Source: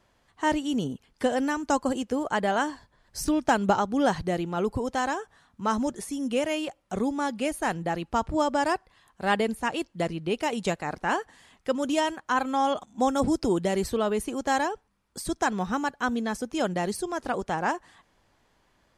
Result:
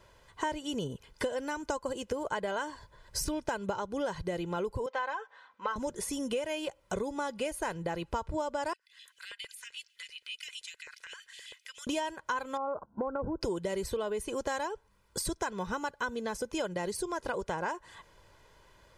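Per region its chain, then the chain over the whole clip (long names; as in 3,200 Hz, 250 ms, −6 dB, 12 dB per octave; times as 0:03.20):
0:04.86–0:05.76: band-pass filter 670–2,700 Hz + comb filter 3.9 ms, depth 54%
0:08.73–0:11.87: inverse Chebyshev band-stop filter 140–730 Hz, stop band 50 dB + downward compressor 5 to 1, threshold −50 dBFS + auto-filter high-pass square 7.7 Hz 470–2,900 Hz
0:12.57–0:13.41: linear-phase brick-wall low-pass 1,600 Hz + downward compressor 3 to 1, threshold −25 dBFS + noise gate −49 dBFS, range −8 dB
whole clip: comb filter 2 ms, depth 59%; downward compressor 6 to 1, threshold −36 dBFS; level +4.5 dB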